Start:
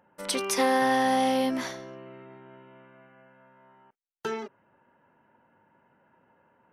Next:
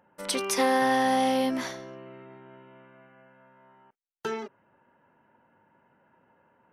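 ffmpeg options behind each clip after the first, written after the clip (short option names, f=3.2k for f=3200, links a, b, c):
-af anull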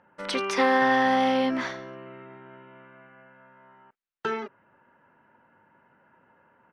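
-af "firequalizer=gain_entry='entry(790,0);entry(1300,5);entry(12000,-24)':delay=0.05:min_phase=1,volume=1.5dB"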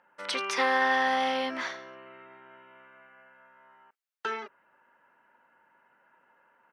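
-af "highpass=f=930:p=1"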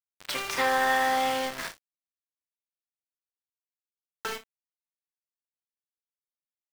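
-af "aeval=exprs='val(0)*gte(abs(val(0)),0.0299)':c=same,aecho=1:1:32|61:0.316|0.158"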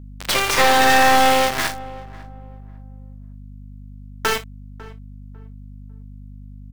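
-filter_complex "[0:a]aeval=exprs='0.224*(cos(1*acos(clip(val(0)/0.224,-1,1)))-cos(1*PI/2))+0.0501*(cos(5*acos(clip(val(0)/0.224,-1,1)))-cos(5*PI/2))+0.0562*(cos(6*acos(clip(val(0)/0.224,-1,1)))-cos(6*PI/2))':c=same,aeval=exprs='val(0)+0.00708*(sin(2*PI*50*n/s)+sin(2*PI*2*50*n/s)/2+sin(2*PI*3*50*n/s)/3+sin(2*PI*4*50*n/s)/4+sin(2*PI*5*50*n/s)/5)':c=same,asplit=2[a][b];[b]adelay=549,lowpass=f=1.1k:p=1,volume=-17.5dB,asplit=2[c][d];[d]adelay=549,lowpass=f=1.1k:p=1,volume=0.31,asplit=2[e][f];[f]adelay=549,lowpass=f=1.1k:p=1,volume=0.31[g];[a][c][e][g]amix=inputs=4:normalize=0,volume=6.5dB"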